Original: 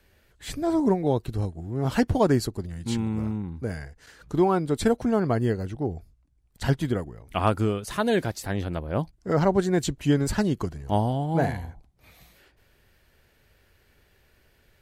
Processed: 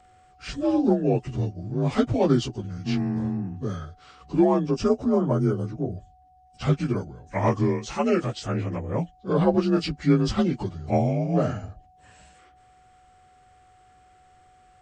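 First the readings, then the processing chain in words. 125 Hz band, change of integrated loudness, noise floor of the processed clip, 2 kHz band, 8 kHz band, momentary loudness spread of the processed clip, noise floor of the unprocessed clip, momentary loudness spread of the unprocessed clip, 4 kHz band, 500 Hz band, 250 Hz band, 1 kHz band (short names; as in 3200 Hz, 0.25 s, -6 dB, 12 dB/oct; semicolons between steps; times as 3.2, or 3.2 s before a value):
+1.0 dB, +1.0 dB, -57 dBFS, -3.5 dB, -5.5 dB, 11 LU, -63 dBFS, 10 LU, 0.0 dB, +1.0 dB, +2.0 dB, -1.5 dB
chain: inharmonic rescaling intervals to 87%; whine 740 Hz -57 dBFS; spectral gain 4.71–5.98, 1500–4700 Hz -7 dB; gain +2.5 dB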